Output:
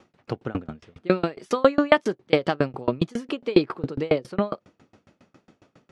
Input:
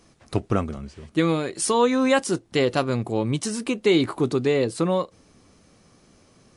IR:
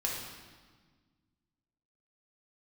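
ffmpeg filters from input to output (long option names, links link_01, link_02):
-af "asetrate=48951,aresample=44100,highpass=110,lowpass=3300,aeval=exprs='val(0)*pow(10,-31*if(lt(mod(7.3*n/s,1),2*abs(7.3)/1000),1-mod(7.3*n/s,1)/(2*abs(7.3)/1000),(mod(7.3*n/s,1)-2*abs(7.3)/1000)/(1-2*abs(7.3)/1000))/20)':channel_layout=same,volume=7.5dB"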